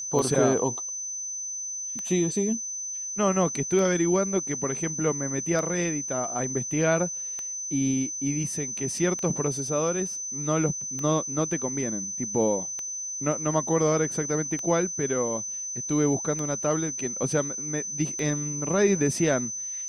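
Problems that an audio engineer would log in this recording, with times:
scratch tick 33 1/3 rpm −19 dBFS
whistle 6,100 Hz −31 dBFS

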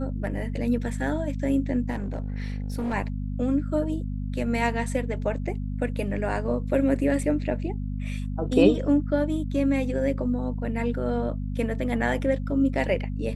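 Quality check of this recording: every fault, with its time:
mains hum 50 Hz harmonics 5 −30 dBFS
0:01.90–0:02.94: clipping −25 dBFS

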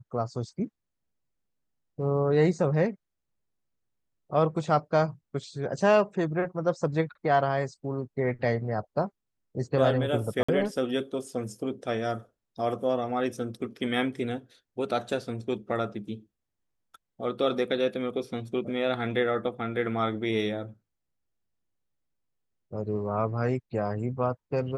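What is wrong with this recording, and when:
0:10.43–0:10.48: drop-out 55 ms

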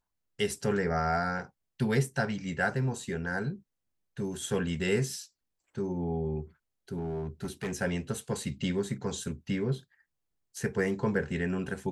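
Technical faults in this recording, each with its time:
0:06.97–0:07.73: clipping −29.5 dBFS

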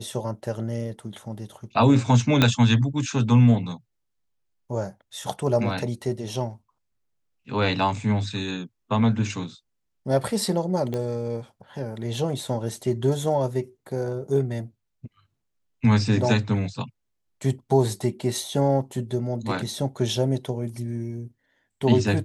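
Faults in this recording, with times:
0:02.42: click −4 dBFS
0:10.94: click −17 dBFS

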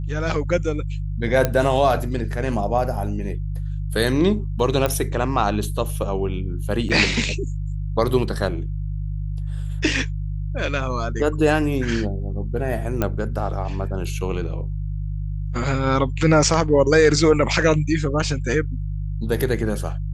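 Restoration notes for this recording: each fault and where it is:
mains hum 50 Hz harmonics 3 −26 dBFS
0:01.45: click −5 dBFS
0:04.86: click −8 dBFS
0:06.89–0:06.90: drop-out 5.6 ms
0:13.02: click −8 dBFS

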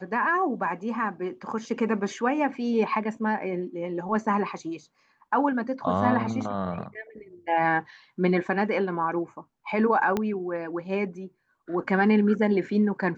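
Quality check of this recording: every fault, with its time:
0:10.17: click −13 dBFS

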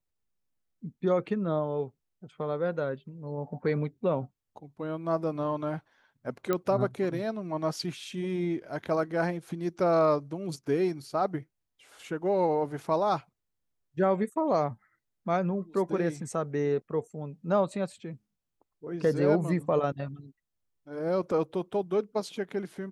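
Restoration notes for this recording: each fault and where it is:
0:06.53: click −14 dBFS

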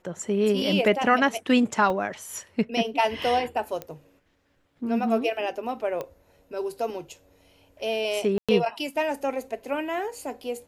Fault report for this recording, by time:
0:01.90: drop-out 2.1 ms
0:03.82: click −19 dBFS
0:06.01: click −19 dBFS
0:08.38–0:08.49: drop-out 106 ms

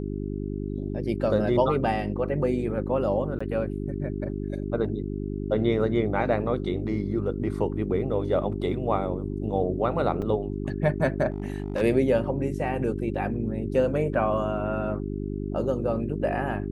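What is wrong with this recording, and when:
mains hum 50 Hz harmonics 8 −31 dBFS
0:03.39–0:03.40: drop-out 15 ms
0:10.22: drop-out 3.5 ms
0:11.30–0:11.82: clipping −24 dBFS

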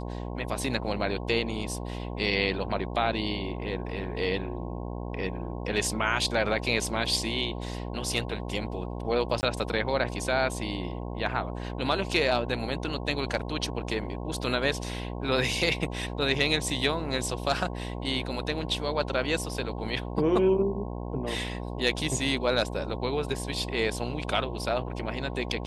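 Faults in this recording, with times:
mains buzz 60 Hz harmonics 18 −35 dBFS
0:09.41–0:09.43: drop-out 19 ms

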